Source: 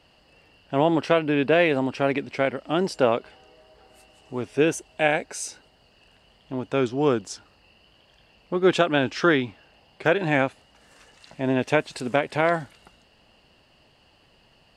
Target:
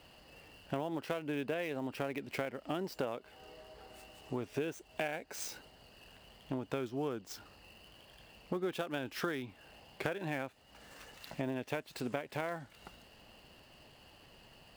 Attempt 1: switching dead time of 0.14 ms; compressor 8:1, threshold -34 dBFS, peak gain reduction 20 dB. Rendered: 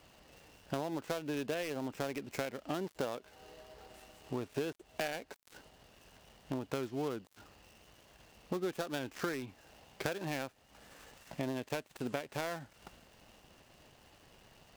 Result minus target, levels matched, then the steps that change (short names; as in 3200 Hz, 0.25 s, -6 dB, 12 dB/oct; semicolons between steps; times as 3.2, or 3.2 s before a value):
switching dead time: distortion +11 dB
change: switching dead time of 0.041 ms